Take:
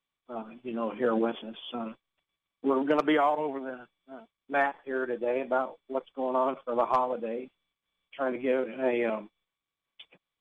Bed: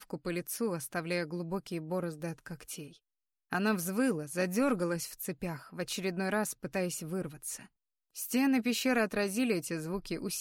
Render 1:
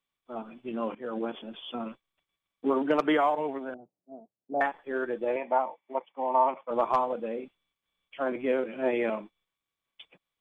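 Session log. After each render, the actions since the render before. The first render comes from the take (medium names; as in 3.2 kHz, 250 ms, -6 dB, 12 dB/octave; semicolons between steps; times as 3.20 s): 0.95–1.54 s: fade in, from -16 dB; 3.74–4.61 s: elliptic band-pass 100–720 Hz; 5.36–6.71 s: cabinet simulation 250–2800 Hz, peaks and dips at 280 Hz -4 dB, 420 Hz -7 dB, 900 Hz +10 dB, 1.4 kHz -9 dB, 2.1 kHz +6 dB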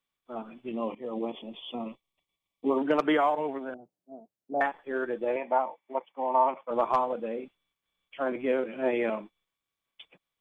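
0.72–2.78 s: Butterworth band-stop 1.5 kHz, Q 1.9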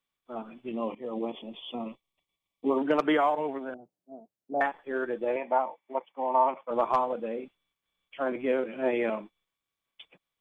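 no audible change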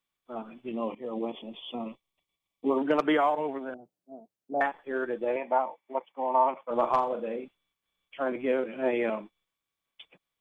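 6.69–7.36 s: flutter echo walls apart 7.2 m, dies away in 0.28 s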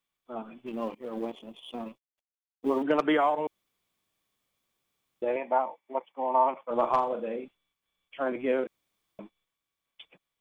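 0.66–2.83 s: companding laws mixed up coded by A; 3.47–5.22 s: room tone; 8.67–9.19 s: room tone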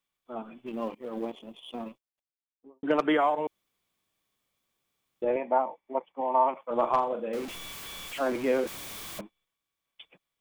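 1.88–2.83 s: studio fade out; 5.24–6.21 s: tilt EQ -2 dB/octave; 7.33–9.21 s: jump at every zero crossing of -34.5 dBFS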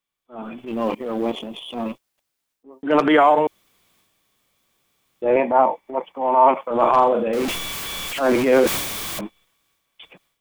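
transient shaper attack -8 dB, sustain +6 dB; level rider gain up to 12 dB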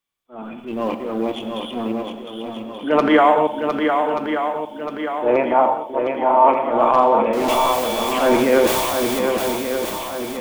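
on a send: shuffle delay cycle 1181 ms, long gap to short 1.5:1, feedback 48%, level -5.5 dB; on the sum: gated-style reverb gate 220 ms flat, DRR 8 dB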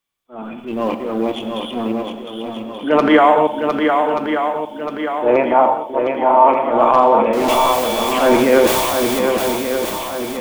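trim +3 dB; peak limiter -1 dBFS, peak gain reduction 2 dB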